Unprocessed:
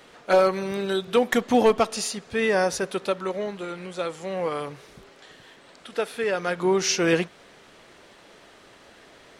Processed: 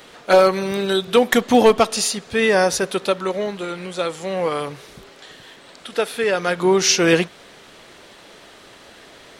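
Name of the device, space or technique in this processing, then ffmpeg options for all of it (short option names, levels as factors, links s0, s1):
presence and air boost: -af "equalizer=f=3700:t=o:w=0.77:g=3,highshelf=f=10000:g=7,volume=1.88"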